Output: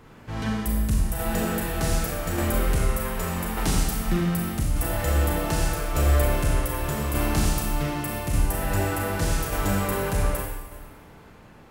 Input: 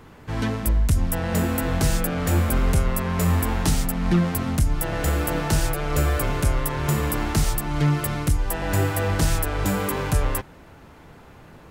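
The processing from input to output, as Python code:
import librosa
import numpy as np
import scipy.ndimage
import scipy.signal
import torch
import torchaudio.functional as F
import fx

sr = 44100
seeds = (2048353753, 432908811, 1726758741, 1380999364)

y = fx.rev_schroeder(x, sr, rt60_s=1.2, comb_ms=29, drr_db=-2.0)
y = fx.tremolo_shape(y, sr, shape='saw_down', hz=0.84, depth_pct=35)
y = y * 10.0 ** (-4.0 / 20.0)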